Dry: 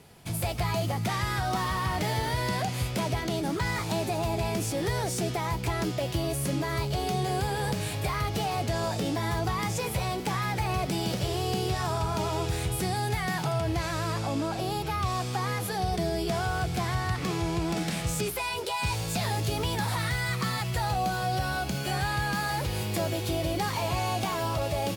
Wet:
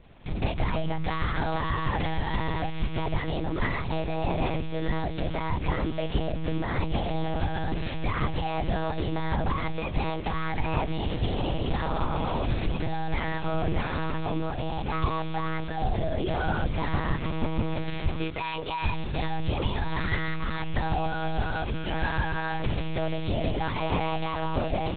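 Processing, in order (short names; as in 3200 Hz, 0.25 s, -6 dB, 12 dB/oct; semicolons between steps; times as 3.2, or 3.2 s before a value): low shelf 90 Hz +9 dB; monotone LPC vocoder at 8 kHz 160 Hz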